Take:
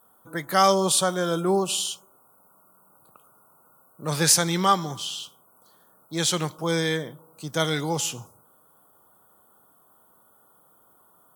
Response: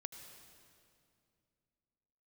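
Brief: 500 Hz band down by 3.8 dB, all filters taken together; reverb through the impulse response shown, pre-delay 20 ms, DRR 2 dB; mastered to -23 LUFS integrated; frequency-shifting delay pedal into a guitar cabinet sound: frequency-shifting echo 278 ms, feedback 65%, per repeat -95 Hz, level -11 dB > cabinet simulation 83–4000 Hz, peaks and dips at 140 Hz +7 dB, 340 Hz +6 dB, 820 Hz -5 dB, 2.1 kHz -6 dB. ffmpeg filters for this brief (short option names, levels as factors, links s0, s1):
-filter_complex "[0:a]equalizer=f=500:t=o:g=-7.5,asplit=2[s0][s1];[1:a]atrim=start_sample=2205,adelay=20[s2];[s1][s2]afir=irnorm=-1:irlink=0,volume=1.19[s3];[s0][s3]amix=inputs=2:normalize=0,asplit=9[s4][s5][s6][s7][s8][s9][s10][s11][s12];[s5]adelay=278,afreqshift=-95,volume=0.282[s13];[s6]adelay=556,afreqshift=-190,volume=0.184[s14];[s7]adelay=834,afreqshift=-285,volume=0.119[s15];[s8]adelay=1112,afreqshift=-380,volume=0.0776[s16];[s9]adelay=1390,afreqshift=-475,volume=0.0501[s17];[s10]adelay=1668,afreqshift=-570,volume=0.0327[s18];[s11]adelay=1946,afreqshift=-665,volume=0.0211[s19];[s12]adelay=2224,afreqshift=-760,volume=0.0138[s20];[s4][s13][s14][s15][s16][s17][s18][s19][s20]amix=inputs=9:normalize=0,highpass=83,equalizer=f=140:t=q:w=4:g=7,equalizer=f=340:t=q:w=4:g=6,equalizer=f=820:t=q:w=4:g=-5,equalizer=f=2100:t=q:w=4:g=-6,lowpass=f=4000:w=0.5412,lowpass=f=4000:w=1.3066,volume=1.26"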